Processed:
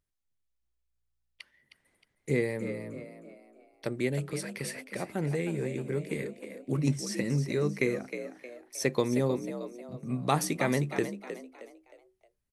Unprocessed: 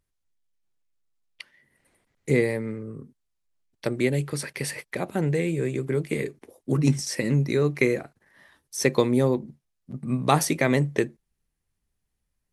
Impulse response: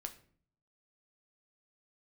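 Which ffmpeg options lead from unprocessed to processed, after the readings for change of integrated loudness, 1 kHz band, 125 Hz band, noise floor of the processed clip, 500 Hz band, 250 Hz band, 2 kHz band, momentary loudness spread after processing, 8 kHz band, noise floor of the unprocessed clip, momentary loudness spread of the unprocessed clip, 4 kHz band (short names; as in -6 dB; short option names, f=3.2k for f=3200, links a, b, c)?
-6.5 dB, -6.0 dB, -6.5 dB, -78 dBFS, -6.0 dB, -6.0 dB, -6.0 dB, 15 LU, -6.0 dB, -79 dBFS, 13 LU, -6.0 dB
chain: -filter_complex "[0:a]asplit=5[a][b][c][d][e];[b]adelay=312,afreqshift=58,volume=-10dB[f];[c]adelay=624,afreqshift=116,volume=-18.4dB[g];[d]adelay=936,afreqshift=174,volume=-26.8dB[h];[e]adelay=1248,afreqshift=232,volume=-35.2dB[i];[a][f][g][h][i]amix=inputs=5:normalize=0,volume=-6.5dB"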